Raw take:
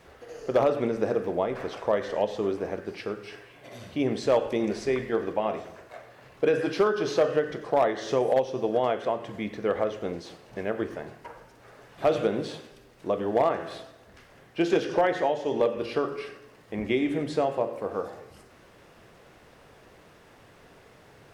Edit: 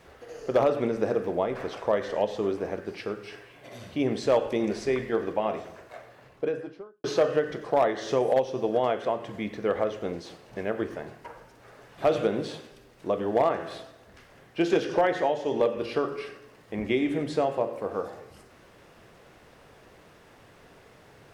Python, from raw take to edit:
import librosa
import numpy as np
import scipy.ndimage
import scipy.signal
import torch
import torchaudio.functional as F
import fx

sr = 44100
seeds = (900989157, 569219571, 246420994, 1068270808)

y = fx.studio_fade_out(x, sr, start_s=5.98, length_s=1.06)